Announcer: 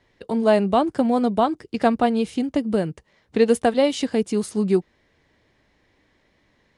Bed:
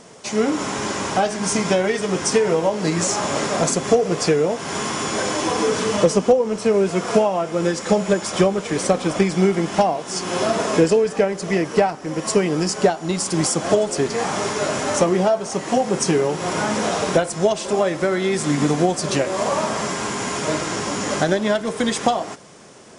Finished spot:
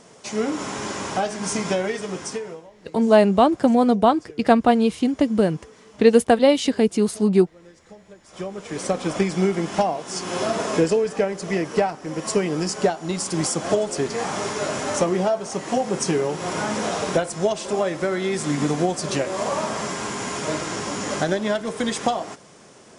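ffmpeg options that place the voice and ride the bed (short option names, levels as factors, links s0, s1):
-filter_complex "[0:a]adelay=2650,volume=1.41[s0];[1:a]volume=10,afade=t=out:st=1.82:d=0.85:silence=0.0668344,afade=t=in:st=8.25:d=0.83:silence=0.0595662[s1];[s0][s1]amix=inputs=2:normalize=0"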